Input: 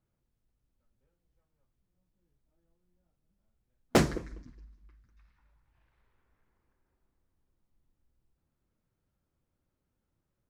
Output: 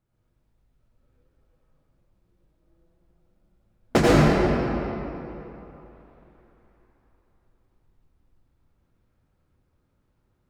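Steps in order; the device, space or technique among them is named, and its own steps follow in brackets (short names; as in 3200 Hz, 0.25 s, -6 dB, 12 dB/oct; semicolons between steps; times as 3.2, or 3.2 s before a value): swimming-pool hall (reverb RT60 3.2 s, pre-delay 79 ms, DRR -7.5 dB; high shelf 5200 Hz -7 dB); gain +3 dB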